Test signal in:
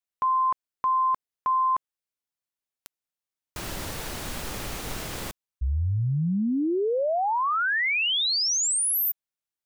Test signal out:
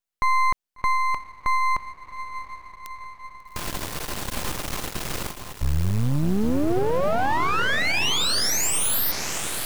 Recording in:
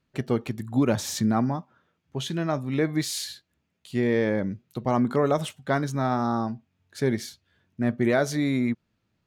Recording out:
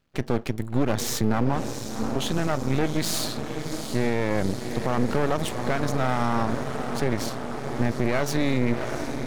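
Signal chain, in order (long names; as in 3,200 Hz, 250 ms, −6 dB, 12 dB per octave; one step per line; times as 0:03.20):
feedback delay with all-pass diffusion 734 ms, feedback 69%, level −10 dB
brickwall limiter −18.5 dBFS
half-wave rectification
level +7 dB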